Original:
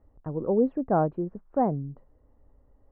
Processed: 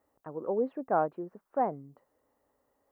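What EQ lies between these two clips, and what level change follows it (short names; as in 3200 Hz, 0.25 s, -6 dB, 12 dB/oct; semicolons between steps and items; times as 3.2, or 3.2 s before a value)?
HPF 340 Hz 6 dB/oct; tilt +3 dB/oct; 0.0 dB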